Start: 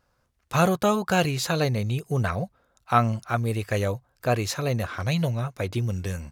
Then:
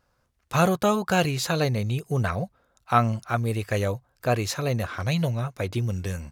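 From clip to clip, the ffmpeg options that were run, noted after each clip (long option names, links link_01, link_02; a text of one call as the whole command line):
ffmpeg -i in.wav -af anull out.wav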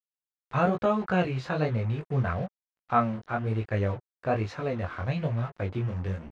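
ffmpeg -i in.wav -af "acrusher=bits=5:mix=0:aa=0.5,flanger=delay=17.5:depth=6.1:speed=1.1,lowpass=2100" out.wav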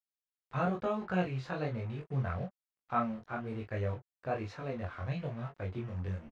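ffmpeg -i in.wav -filter_complex "[0:a]asplit=2[link_01][link_02];[link_02]adelay=22,volume=-4dB[link_03];[link_01][link_03]amix=inputs=2:normalize=0,volume=-9dB" out.wav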